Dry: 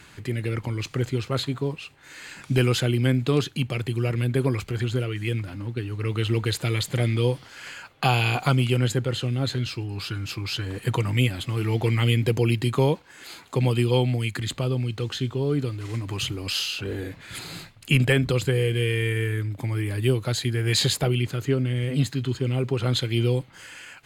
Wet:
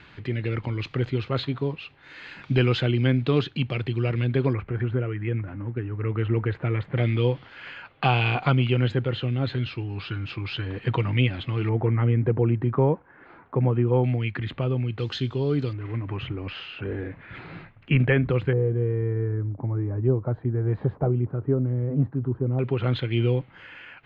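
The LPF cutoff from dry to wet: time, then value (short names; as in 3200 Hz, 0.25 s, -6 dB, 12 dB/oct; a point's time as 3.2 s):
LPF 24 dB/oct
3900 Hz
from 4.53 s 2000 Hz
from 6.97 s 3300 Hz
from 11.69 s 1600 Hz
from 14.04 s 2700 Hz
from 14.99 s 5000 Hz
from 15.73 s 2300 Hz
from 18.53 s 1100 Hz
from 22.59 s 2900 Hz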